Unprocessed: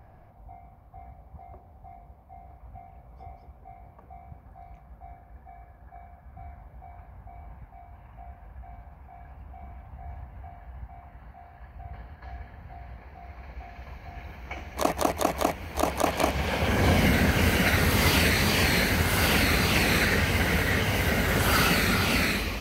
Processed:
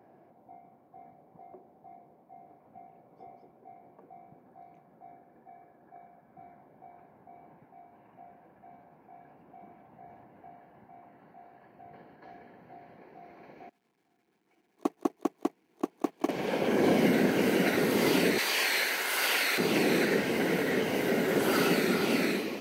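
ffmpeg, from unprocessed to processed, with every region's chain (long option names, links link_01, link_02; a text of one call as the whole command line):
ffmpeg -i in.wav -filter_complex "[0:a]asettb=1/sr,asplit=3[link_01][link_02][link_03];[link_01]atrim=end=13.694[link_04];[link_02]atrim=start=13.69:end=16.29,asetpts=PTS-STARTPTS,afade=type=in:duration=0.004:curve=qsin,afade=type=out:start_time=2.596:duration=0.004:curve=qsin,aeval=exprs='val(0)+0.5*0.0251*sgn(val(0))':channel_layout=same,agate=range=-32dB:threshold=-21dB:ratio=16:release=100:detection=peak,equalizer=frequency=570:width_type=o:width=0.27:gain=-12.5[link_05];[link_03]atrim=start=16.286[link_06];[link_04][link_05]acrossfade=duration=0.004:curve1=hsin:curve2=qsin[link_07];[link_07][link_06]acrossfade=duration=0.004:curve1=qsin:curve2=hsin,asettb=1/sr,asplit=3[link_08][link_09][link_10];[link_08]atrim=end=18.384[link_11];[link_09]atrim=start=18.38:end=19.58,asetpts=PTS-STARTPTS,afade=type=in:duration=0.004:curve=qsin,afade=type=out:start_time=1.196:duration=0.004:curve=qsin,highpass=1100,acontrast=25[link_12];[link_10]atrim=start=19.576[link_13];[link_11][link_12]acrossfade=duration=0.004:curve1=hsin:curve2=qsin[link_14];[link_14][link_13]acrossfade=duration=0.004:curve1=qsin:curve2=hsin,highpass=frequency=160:width=0.5412,highpass=frequency=160:width=1.3066,equalizer=frequency=360:width=1:gain=13.5,bandreject=frequency=1200:width=15,volume=-7.5dB" out.wav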